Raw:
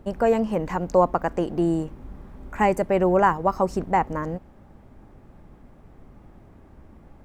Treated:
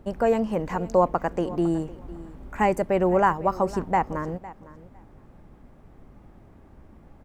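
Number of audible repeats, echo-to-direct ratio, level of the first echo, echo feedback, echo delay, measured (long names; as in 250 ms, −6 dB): 2, −18.5 dB, −18.5 dB, 16%, 506 ms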